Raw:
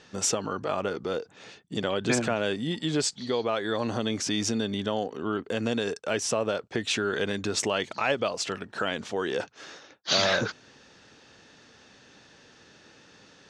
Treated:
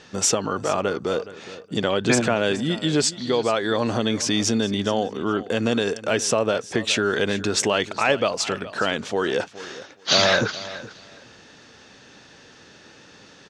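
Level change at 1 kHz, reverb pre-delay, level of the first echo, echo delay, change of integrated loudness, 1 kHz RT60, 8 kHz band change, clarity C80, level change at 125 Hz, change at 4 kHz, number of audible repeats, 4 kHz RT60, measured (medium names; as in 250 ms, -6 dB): +6.0 dB, no reverb, -16.0 dB, 419 ms, +6.0 dB, no reverb, +6.0 dB, no reverb, +6.0 dB, +6.0 dB, 2, no reverb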